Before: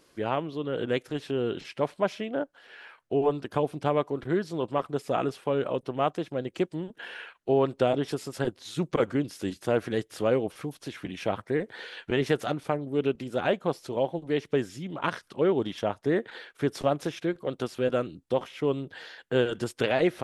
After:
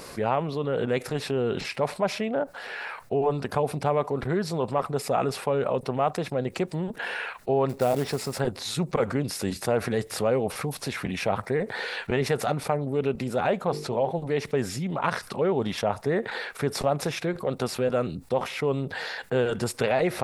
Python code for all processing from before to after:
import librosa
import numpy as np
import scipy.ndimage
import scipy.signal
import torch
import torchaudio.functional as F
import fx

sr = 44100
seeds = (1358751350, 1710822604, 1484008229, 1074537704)

y = fx.chain(x, sr, fx.high_shelf(hz=3200.0, db=-6.0),
    fx.quant_float(bits=2), at=(7.69, 8.4))
y = fx.chain(y, sr, fx.high_shelf(hz=9100.0, db=-12.0),
    fx.hum_notches(base_hz=50, count=9), at=(13.65, 14.11))
y = fx.graphic_eq_31(y, sr, hz=(315, 800, 1600, 3150, 6300), db=(-11, 3, -3, -9, -4))
y = fx.env_flatten(y, sr, amount_pct=50)